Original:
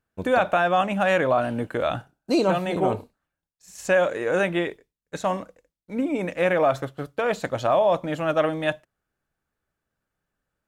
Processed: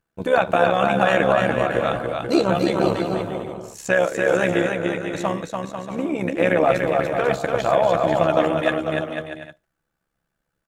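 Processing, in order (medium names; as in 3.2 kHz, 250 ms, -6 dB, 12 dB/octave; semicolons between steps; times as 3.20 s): comb 6 ms, depth 42%; AM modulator 69 Hz, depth 55%; bouncing-ball echo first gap 290 ms, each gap 0.7×, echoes 5; trim +4 dB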